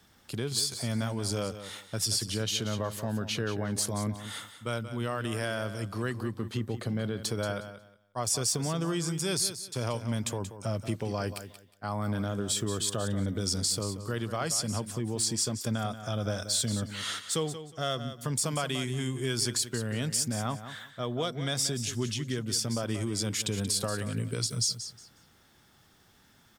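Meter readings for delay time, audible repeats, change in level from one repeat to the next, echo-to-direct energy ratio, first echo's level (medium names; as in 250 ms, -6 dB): 181 ms, 2, -13.0 dB, -11.5 dB, -11.5 dB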